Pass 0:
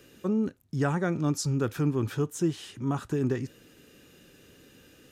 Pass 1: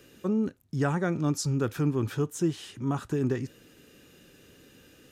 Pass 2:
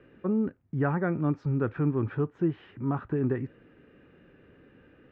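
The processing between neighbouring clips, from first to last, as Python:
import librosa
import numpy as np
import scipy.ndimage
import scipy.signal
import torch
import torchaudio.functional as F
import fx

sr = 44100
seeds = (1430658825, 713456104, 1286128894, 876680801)

y1 = x
y2 = scipy.signal.sosfilt(scipy.signal.butter(4, 2100.0, 'lowpass', fs=sr, output='sos'), y1)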